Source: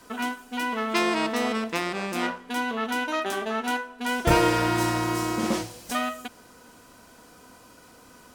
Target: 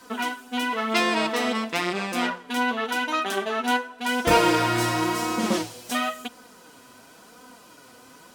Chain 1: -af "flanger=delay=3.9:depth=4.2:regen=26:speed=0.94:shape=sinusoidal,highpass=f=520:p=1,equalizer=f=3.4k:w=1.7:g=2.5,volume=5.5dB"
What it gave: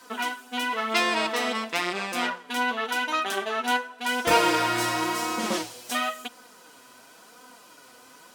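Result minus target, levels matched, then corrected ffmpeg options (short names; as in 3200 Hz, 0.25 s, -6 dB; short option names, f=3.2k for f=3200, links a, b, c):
125 Hz band -7.5 dB
-af "flanger=delay=3.9:depth=4.2:regen=26:speed=0.94:shape=sinusoidal,highpass=f=140:p=1,equalizer=f=3.4k:w=1.7:g=2.5,volume=5.5dB"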